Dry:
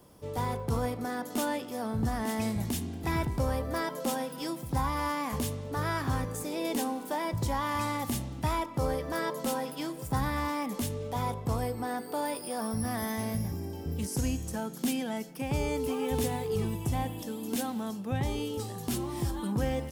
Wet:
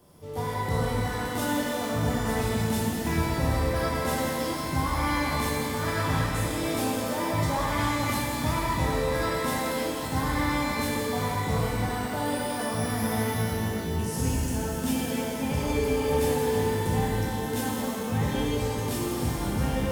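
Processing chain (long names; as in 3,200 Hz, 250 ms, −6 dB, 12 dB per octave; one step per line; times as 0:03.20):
reverb with rising layers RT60 3.1 s, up +12 semitones, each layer −8 dB, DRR −5.5 dB
level −2.5 dB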